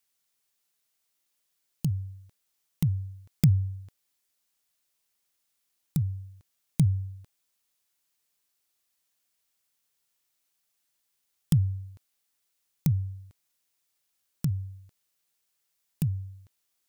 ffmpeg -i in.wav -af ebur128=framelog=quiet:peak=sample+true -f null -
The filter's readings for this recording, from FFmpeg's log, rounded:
Integrated loudness:
  I:         -29.6 LUFS
  Threshold: -41.3 LUFS
Loudness range:
  LRA:         6.1 LU
  Threshold: -54.0 LUFS
  LRA low:   -37.5 LUFS
  LRA high:  -31.4 LUFS
Sample peak:
  Peak:       -7.7 dBFS
True peak:
  Peak:       -7.6 dBFS